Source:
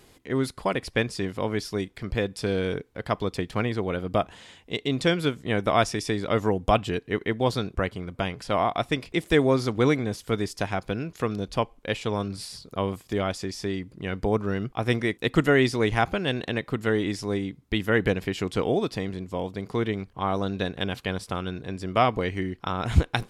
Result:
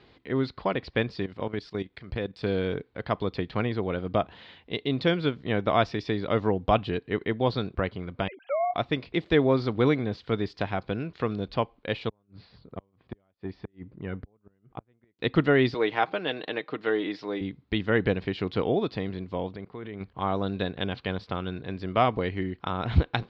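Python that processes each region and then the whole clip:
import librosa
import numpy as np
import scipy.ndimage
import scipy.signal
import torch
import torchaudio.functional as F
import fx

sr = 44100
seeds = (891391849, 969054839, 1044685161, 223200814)

y = fx.chain(x, sr, fx.level_steps(step_db=14),
    fx.peak_eq(hz=8500.0, db=14.0, octaves=0.43), at=(1.23, 2.43))
y = fx.chain(y, sr, fx.sine_speech(),
    fx.peak_eq(hz=1100.0, db=-10.5, octaves=0.36), at=(8.28, 8.74))
y = fx.chain(y, sr, fx.gate_flip(shuts_db=-18.0, range_db=-40),
    fx.spacing_loss(db_at_10k=36),
    fx.transformer_sat(knee_hz=230.0), at=(12.09, 15.19))
y = fx.chain(y, sr, fx.bandpass_edges(low_hz=320.0, high_hz=6700.0),
    fx.comb(ms=6.5, depth=0.38), at=(15.74, 17.41))
y = fx.chain(y, sr, fx.level_steps(step_db=18),
    fx.bass_treble(bass_db=-2, treble_db=-14), at=(19.56, 20.01))
y = scipy.signal.sosfilt(scipy.signal.cheby1(4, 1.0, 4300.0, 'lowpass', fs=sr, output='sos'), y)
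y = fx.dynamic_eq(y, sr, hz=2000.0, q=0.78, threshold_db=-39.0, ratio=4.0, max_db=-3)
y = scipy.signal.sosfilt(scipy.signal.butter(2, 50.0, 'highpass', fs=sr, output='sos'), y)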